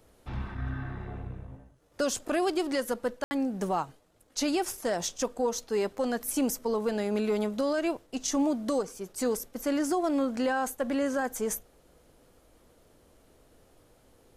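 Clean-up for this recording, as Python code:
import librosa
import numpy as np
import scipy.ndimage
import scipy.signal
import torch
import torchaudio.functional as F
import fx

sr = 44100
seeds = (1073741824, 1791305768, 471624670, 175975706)

y = fx.fix_ambience(x, sr, seeds[0], print_start_s=3.86, print_end_s=4.36, start_s=3.24, end_s=3.31)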